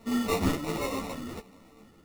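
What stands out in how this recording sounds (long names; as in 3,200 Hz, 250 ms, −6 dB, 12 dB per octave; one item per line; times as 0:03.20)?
a buzz of ramps at a fixed pitch in blocks of 16 samples
phaser sweep stages 8, 1.4 Hz, lowest notch 740–2,000 Hz
aliases and images of a low sample rate 1,600 Hz, jitter 0%
a shimmering, thickened sound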